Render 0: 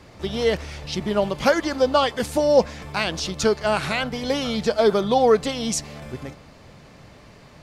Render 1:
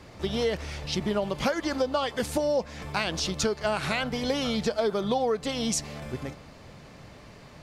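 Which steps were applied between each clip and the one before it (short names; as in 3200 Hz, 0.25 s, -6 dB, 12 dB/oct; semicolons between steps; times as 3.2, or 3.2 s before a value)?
compressor 6:1, threshold -22 dBFS, peak gain reduction 11.5 dB; gain -1 dB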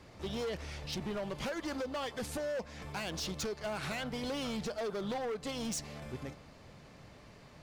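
hard clip -26.5 dBFS, distortion -9 dB; gain -7 dB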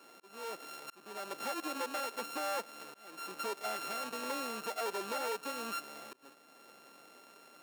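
sample sorter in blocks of 32 samples; HPF 290 Hz 24 dB/oct; auto swell 0.491 s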